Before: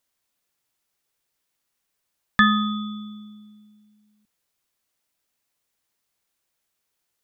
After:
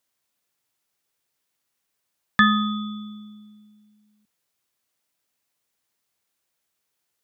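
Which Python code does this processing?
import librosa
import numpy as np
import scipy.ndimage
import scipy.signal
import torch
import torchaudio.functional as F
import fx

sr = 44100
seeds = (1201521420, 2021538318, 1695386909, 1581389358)

y = scipy.signal.sosfilt(scipy.signal.butter(2, 69.0, 'highpass', fs=sr, output='sos'), x)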